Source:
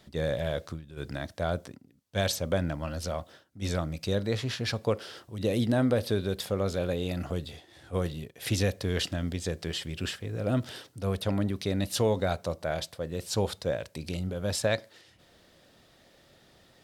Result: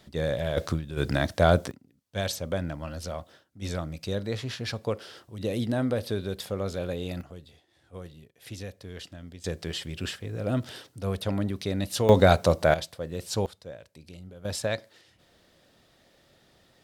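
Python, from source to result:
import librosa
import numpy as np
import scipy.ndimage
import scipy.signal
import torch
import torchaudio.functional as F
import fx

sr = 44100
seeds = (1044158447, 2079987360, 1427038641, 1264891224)

y = fx.gain(x, sr, db=fx.steps((0.0, 1.5), (0.57, 10.0), (1.71, -2.0), (7.21, -12.0), (9.44, 0.0), (12.09, 10.5), (12.74, 0.0), (13.46, -12.0), (14.45, -2.0)))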